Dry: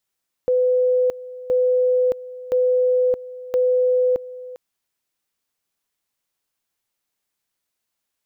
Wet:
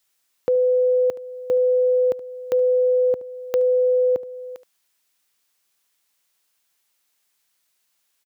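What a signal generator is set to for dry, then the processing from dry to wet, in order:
tone at two levels in turn 503 Hz −14.5 dBFS, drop 17.5 dB, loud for 0.62 s, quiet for 0.40 s, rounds 4
high-pass filter 88 Hz
single-tap delay 73 ms −17.5 dB
one half of a high-frequency compander encoder only

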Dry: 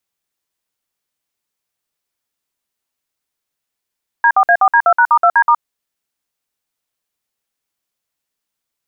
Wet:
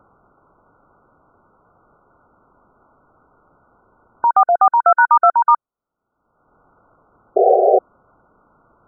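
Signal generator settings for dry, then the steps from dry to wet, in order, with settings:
touch tones "D4A4D2#*2D*", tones 68 ms, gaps 56 ms, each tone −9.5 dBFS
upward compression, threshold −18 dBFS
sound drawn into the spectrogram noise, 0:07.36–0:07.79, 370–790 Hz −12 dBFS
linear-phase brick-wall low-pass 1,500 Hz

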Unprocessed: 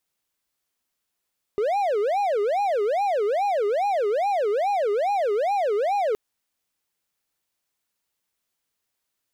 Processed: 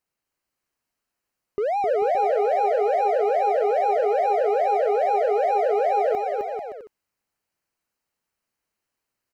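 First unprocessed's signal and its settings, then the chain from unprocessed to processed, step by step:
siren wail 404–822 Hz 2.4 per second triangle −18 dBFS 4.57 s
high-shelf EQ 3,500 Hz −8.5 dB
notch filter 3,500 Hz, Q 5.5
bouncing-ball delay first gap 260 ms, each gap 0.7×, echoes 5

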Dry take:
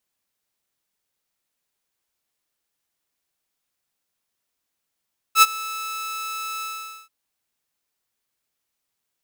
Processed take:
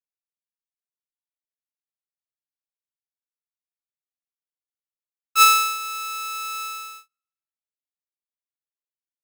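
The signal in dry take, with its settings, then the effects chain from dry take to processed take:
note with an ADSR envelope saw 1,310 Hz, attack 72 ms, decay 33 ms, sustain −20.5 dB, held 1.27 s, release 465 ms −5 dBFS
peak hold with a decay on every bin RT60 1.09 s
noise gate −42 dBFS, range −37 dB

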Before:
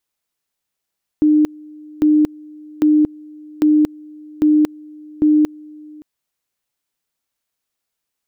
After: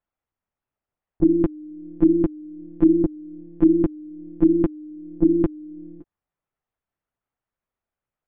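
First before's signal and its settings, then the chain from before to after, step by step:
tone at two levels in turn 303 Hz −9 dBFS, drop 25.5 dB, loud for 0.23 s, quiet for 0.57 s, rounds 6
low-pass filter 1,400 Hz 12 dB per octave
one-pitch LPC vocoder at 8 kHz 170 Hz

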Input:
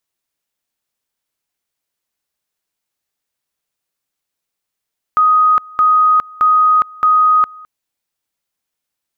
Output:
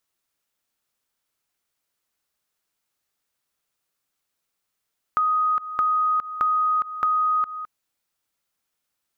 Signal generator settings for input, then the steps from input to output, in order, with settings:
tone at two levels in turn 1,250 Hz −7.5 dBFS, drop 25 dB, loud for 0.41 s, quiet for 0.21 s, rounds 4
parametric band 1,300 Hz +4 dB 0.35 octaves
brickwall limiter −12 dBFS
downward compressor, threshold −20 dBFS

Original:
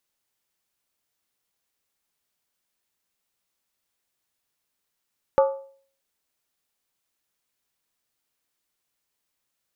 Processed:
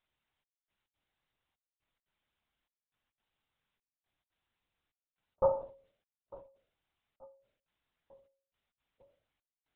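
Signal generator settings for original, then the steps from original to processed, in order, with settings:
struck skin, lowest mode 545 Hz, decay 0.50 s, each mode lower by 6.5 dB, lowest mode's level −12 dB
gate pattern "xxxxx...xx.xx" 174 BPM −60 dB
feedback echo with a low-pass in the loop 892 ms, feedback 66%, low-pass 870 Hz, level −21 dB
linear-prediction vocoder at 8 kHz whisper

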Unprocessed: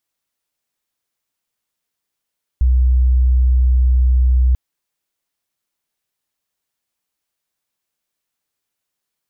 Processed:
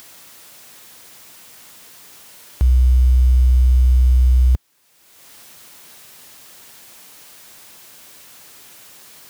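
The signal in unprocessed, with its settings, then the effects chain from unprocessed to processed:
tone sine 62.9 Hz −9.5 dBFS 1.94 s
mu-law and A-law mismatch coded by mu
high-pass filter 78 Hz
in parallel at −1 dB: upward compression, threshold −22 dBFS

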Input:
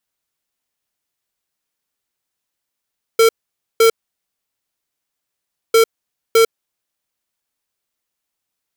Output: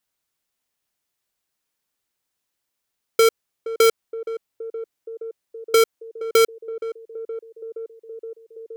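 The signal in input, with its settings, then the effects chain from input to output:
beeps in groups square 453 Hz, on 0.10 s, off 0.51 s, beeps 2, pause 1.84 s, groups 2, −10 dBFS
downward compressor, threshold −14 dBFS
feedback echo with a band-pass in the loop 470 ms, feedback 80%, band-pass 410 Hz, level −13 dB

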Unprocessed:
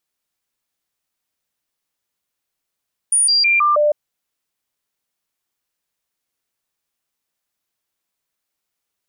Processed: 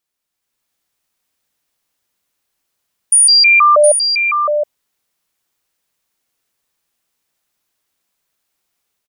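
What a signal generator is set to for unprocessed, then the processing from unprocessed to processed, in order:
stepped sweep 9,520 Hz down, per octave 1, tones 5, 0.16 s, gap 0.00 s −11.5 dBFS
automatic gain control gain up to 6.5 dB
on a send: single-tap delay 716 ms −6.5 dB

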